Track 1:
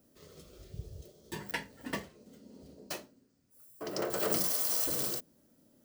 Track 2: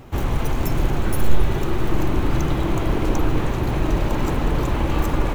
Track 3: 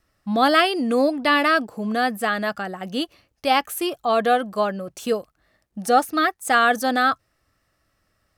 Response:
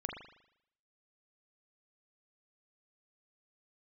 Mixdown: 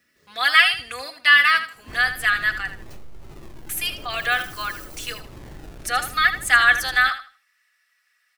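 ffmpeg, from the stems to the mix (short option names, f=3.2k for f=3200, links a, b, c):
-filter_complex "[0:a]volume=-7.5dB[a];[1:a]acrusher=samples=36:mix=1:aa=0.000001:lfo=1:lforange=21.6:lforate=0.53,adelay=1750,volume=-17.5dB,asplit=2[b][c];[c]volume=-20.5dB[d];[2:a]highpass=f=1.9k:t=q:w=2.2,aecho=1:1:4.1:0.65,volume=0.5dB,asplit=3[e][f][g];[e]atrim=end=2.71,asetpts=PTS-STARTPTS,afade=t=out:st=2.706:d=0.004:c=hsin[h];[f]atrim=start=2.71:end=3.69,asetpts=PTS-STARTPTS,volume=0[i];[g]atrim=start=3.69,asetpts=PTS-STARTPTS,afade=t=in:d=0.004:c=hsin[j];[h][i][j]concat=n=3:v=0:a=1,asplit=2[k][l];[l]volume=-11.5dB[m];[a][b]amix=inputs=2:normalize=0,acompressor=threshold=-35dB:ratio=6,volume=0dB[n];[d][m]amix=inputs=2:normalize=0,aecho=0:1:79|158|237|316:1|0.24|0.0576|0.0138[o];[k][n][o]amix=inputs=3:normalize=0"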